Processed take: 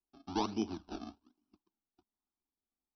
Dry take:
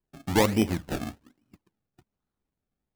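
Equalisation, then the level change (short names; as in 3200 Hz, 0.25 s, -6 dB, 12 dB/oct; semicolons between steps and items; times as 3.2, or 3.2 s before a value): brick-wall FIR low-pass 6000 Hz; low shelf 130 Hz -8 dB; fixed phaser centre 520 Hz, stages 6; -7.5 dB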